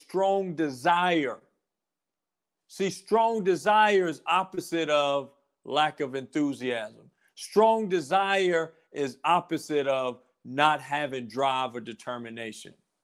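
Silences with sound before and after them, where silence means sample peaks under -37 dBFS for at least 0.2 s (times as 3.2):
1.35–2.73
5.25–5.66
6.87–7.39
8.67–8.95
10.13–10.46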